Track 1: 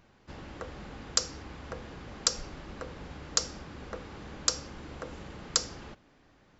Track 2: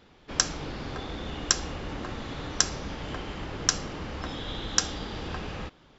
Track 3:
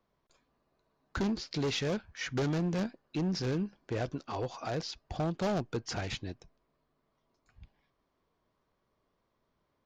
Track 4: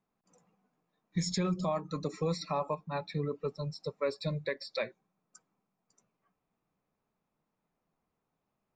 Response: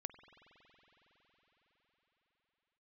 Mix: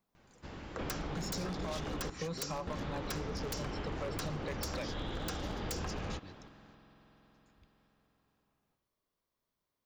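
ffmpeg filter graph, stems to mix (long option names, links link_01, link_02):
-filter_complex "[0:a]adelay=150,volume=-5dB,asplit=2[link_01][link_02];[link_02]volume=-3.5dB[link_03];[1:a]lowpass=frequency=1900:poles=1,adelay=500,volume=0dB,asplit=3[link_04][link_05][link_06];[link_04]atrim=end=2.1,asetpts=PTS-STARTPTS,afade=type=out:start_time=2.096:duration=0.004:curve=hsin[link_07];[link_05]atrim=start=2.1:end=2.67,asetpts=PTS-STARTPTS,volume=0[link_08];[link_06]atrim=start=2.67,asetpts=PTS-STARTPTS,afade=type=in:duration=0.004:curve=hsin[link_09];[link_07][link_08][link_09]concat=n=3:v=0:a=1,asplit=2[link_10][link_11];[link_11]volume=-6dB[link_12];[2:a]crystalizer=i=4:c=0,volume=-15dB,asplit=2[link_13][link_14];[link_14]volume=-7dB[link_15];[3:a]volume=-1.5dB[link_16];[4:a]atrim=start_sample=2205[link_17];[link_03][link_12][link_15]amix=inputs=3:normalize=0[link_18];[link_18][link_17]afir=irnorm=-1:irlink=0[link_19];[link_01][link_10][link_13][link_16][link_19]amix=inputs=5:normalize=0,aeval=exprs='0.0596*(abs(mod(val(0)/0.0596+3,4)-2)-1)':channel_layout=same,acompressor=threshold=-35dB:ratio=6"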